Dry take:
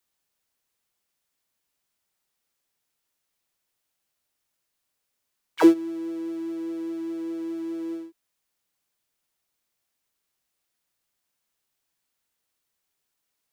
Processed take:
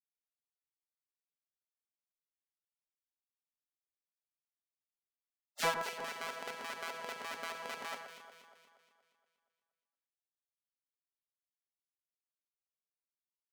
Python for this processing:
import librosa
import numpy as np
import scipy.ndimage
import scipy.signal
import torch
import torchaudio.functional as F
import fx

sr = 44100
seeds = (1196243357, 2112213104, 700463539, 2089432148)

p1 = fx.schmitt(x, sr, flips_db=-28.0)
p2 = x + (p1 * librosa.db_to_amplitude(-5.0))
p3 = fx.spec_gate(p2, sr, threshold_db=-25, keep='weak')
p4 = scipy.signal.sosfilt(scipy.signal.butter(2, 370.0, 'highpass', fs=sr, output='sos'), p3)
p5 = fx.high_shelf(p4, sr, hz=5400.0, db=-9.0)
p6 = fx.fold_sine(p5, sr, drive_db=6, ceiling_db=-19.0)
p7 = p6 + fx.echo_alternate(p6, sr, ms=118, hz=1800.0, feedback_pct=70, wet_db=-6.5, dry=0)
y = p7 * librosa.db_to_amplitude(-2.5)